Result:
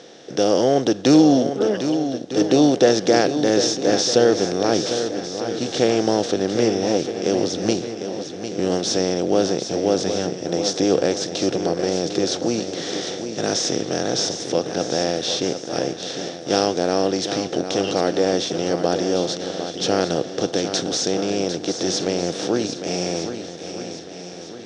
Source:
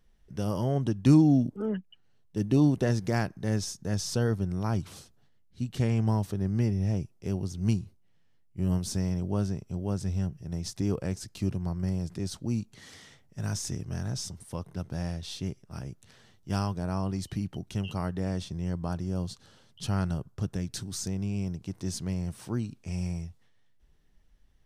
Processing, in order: per-bin compression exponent 0.6; speaker cabinet 320–6600 Hz, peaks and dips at 350 Hz +4 dB, 500 Hz +9 dB, 730 Hz +6 dB, 1000 Hz -8 dB, 3600 Hz +8 dB, 5600 Hz +7 dB; swung echo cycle 1.254 s, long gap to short 1.5:1, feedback 37%, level -9 dB; gain +7.5 dB

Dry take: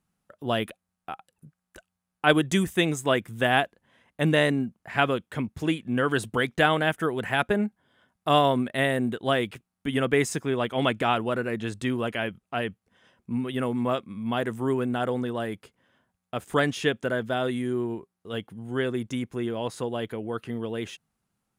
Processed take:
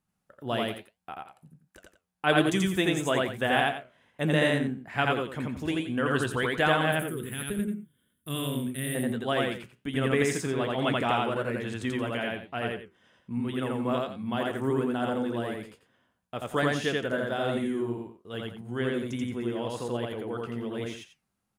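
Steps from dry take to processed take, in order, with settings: 6.92–8.95 EQ curve 190 Hz 0 dB, 460 Hz -7 dB, 750 Hz -26 dB, 1100 Hz -15 dB, 3500 Hz -5 dB, 5200 Hz -16 dB, 10000 Hz +14 dB; flange 1.2 Hz, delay 7.2 ms, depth 9.8 ms, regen +75%; on a send: loudspeakers at several distances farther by 29 m -1 dB, 60 m -12 dB

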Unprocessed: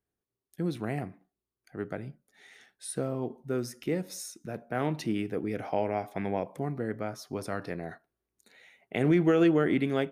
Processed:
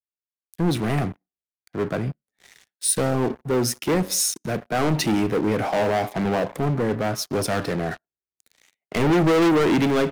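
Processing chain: sample leveller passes 5; three-band expander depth 40%; gain -2 dB

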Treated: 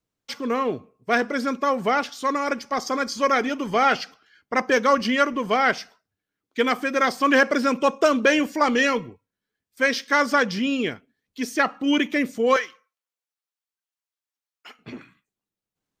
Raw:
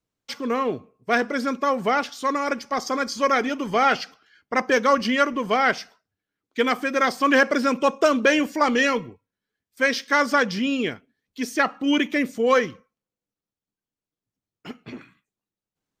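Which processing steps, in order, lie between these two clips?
12.56–14.79 HPF 960 Hz 12 dB/oct

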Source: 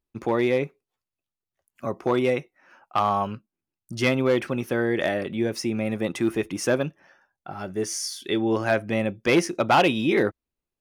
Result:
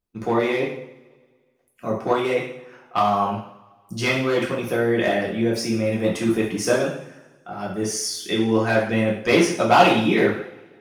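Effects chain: two-slope reverb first 0.6 s, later 1.7 s, from -20 dB, DRR -4.5 dB; harmonic-percussive split percussive +5 dB; gain -4.5 dB

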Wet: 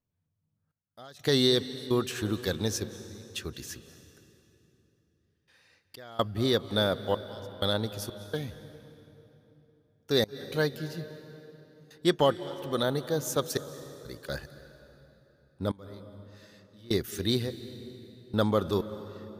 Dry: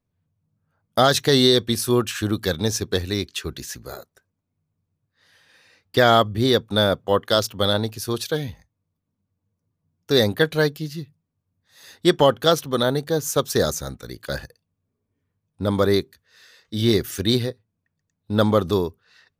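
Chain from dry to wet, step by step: step gate "xxx..xx.x" 63 bpm -24 dB; on a send: reverb RT60 3.4 s, pre-delay 0.167 s, DRR 13 dB; on the sum: gain -7.5 dB

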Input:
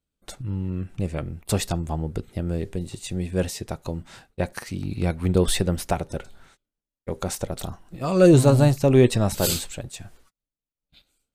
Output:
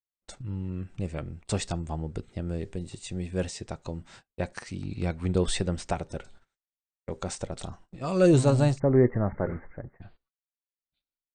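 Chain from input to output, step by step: Chebyshev low-pass 8900 Hz, order 8, from 8.78 s 2100 Hz, from 10.01 s 4700 Hz; gate -45 dBFS, range -24 dB; gain -4.5 dB

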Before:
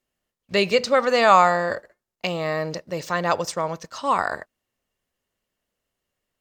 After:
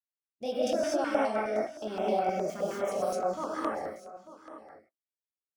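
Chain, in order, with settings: speed glide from 127% -> 103%; HPF 82 Hz; expander -40 dBFS; ten-band EQ 125 Hz -12 dB, 500 Hz +5 dB, 1000 Hz -5 dB, 2000 Hz -9 dB, 4000 Hz -8 dB, 8000 Hz -9 dB; limiter -19 dBFS, peak gain reduction 11.5 dB; chorus 1.3 Hz, delay 20 ms, depth 8 ms; rotary speaker horn 5.5 Hz; echo 0.891 s -16 dB; non-linear reverb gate 0.27 s rising, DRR -5 dB; stepped notch 9.6 Hz 450–6700 Hz

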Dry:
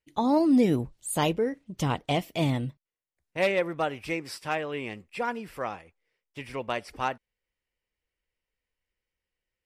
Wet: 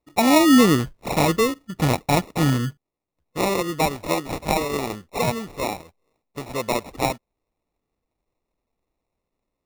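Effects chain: 2.36–3.77 spectral gain 510–1600 Hz -11 dB; 3.89–5.36 dynamic EQ 4300 Hz, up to +7 dB, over -48 dBFS, Q 0.73; sample-and-hold 28×; gain +7 dB

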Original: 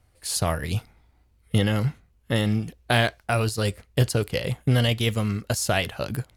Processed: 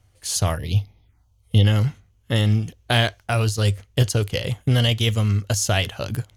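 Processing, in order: thirty-one-band EQ 100 Hz +10 dB, 3150 Hz +6 dB, 6300 Hz +9 dB; 0.56–1.65 envelope phaser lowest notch 240 Hz, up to 1500 Hz, full sweep at -27.5 dBFS

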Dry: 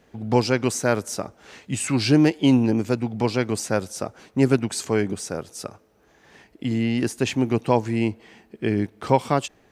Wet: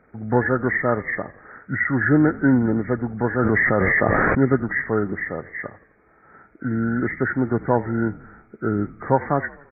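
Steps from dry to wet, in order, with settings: nonlinear frequency compression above 1200 Hz 4:1; frequency-shifting echo 84 ms, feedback 57%, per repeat -44 Hz, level -20 dB; 3.39–4.4 fast leveller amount 100%

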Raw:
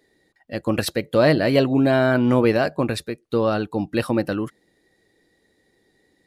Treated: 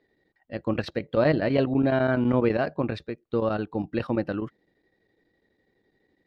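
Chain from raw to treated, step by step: chopper 12 Hz, depth 60%, duty 85%; air absorption 230 m; gain -4 dB

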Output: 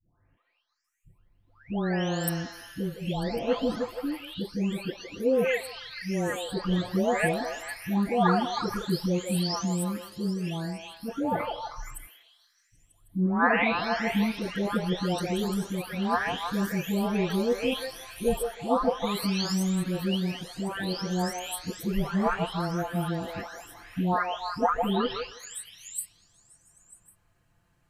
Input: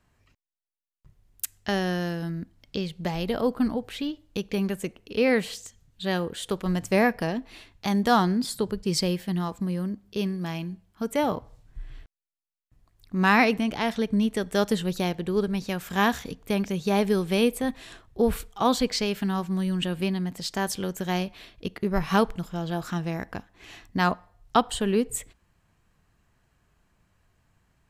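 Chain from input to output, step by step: spectral delay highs late, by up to 0.841 s; delay with a stepping band-pass 0.157 s, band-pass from 630 Hz, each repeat 0.7 oct, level -3 dB

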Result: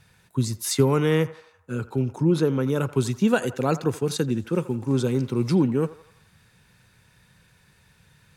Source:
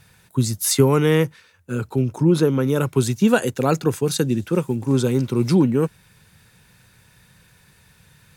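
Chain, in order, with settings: high shelf 11000 Hz -9.5 dB; narrowing echo 84 ms, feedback 58%, band-pass 1000 Hz, level -14.5 dB; gain -4 dB

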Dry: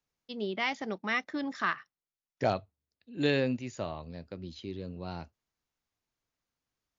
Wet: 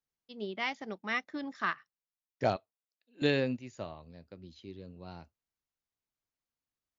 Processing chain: 2.56–3.22 HPF 460 Hz 12 dB/oct; upward expander 1.5:1, over -41 dBFS

